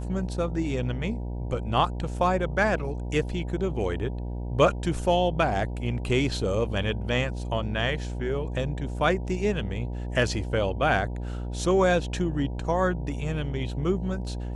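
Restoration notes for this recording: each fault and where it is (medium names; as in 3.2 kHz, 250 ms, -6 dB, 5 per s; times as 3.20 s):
buzz 60 Hz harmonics 16 -32 dBFS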